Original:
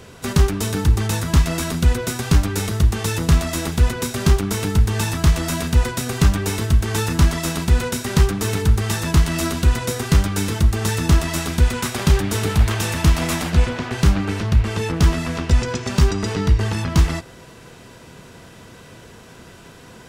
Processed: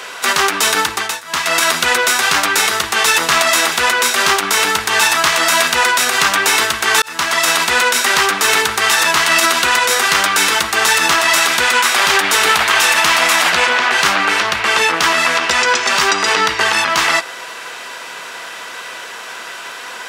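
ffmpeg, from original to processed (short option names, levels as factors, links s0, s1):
-filter_complex "[0:a]asplit=4[s0][s1][s2][s3];[s0]atrim=end=1.22,asetpts=PTS-STARTPTS,afade=t=out:st=0.79:d=0.43:silence=0.0707946[s4];[s1]atrim=start=1.22:end=1.23,asetpts=PTS-STARTPTS,volume=0.0708[s5];[s2]atrim=start=1.23:end=7.02,asetpts=PTS-STARTPTS,afade=t=in:d=0.43:silence=0.0707946,afade=t=out:st=5.786:d=0.004:c=hsin[s6];[s3]atrim=start=7.02,asetpts=PTS-STARTPTS,afade=t=in:d=0.51[s7];[s4][s5][s6][s7]concat=n=4:v=0:a=1,highpass=1100,highshelf=f=4100:g=-8.5,alimiter=level_in=13.3:limit=0.891:release=50:level=0:latency=1,volume=0.891"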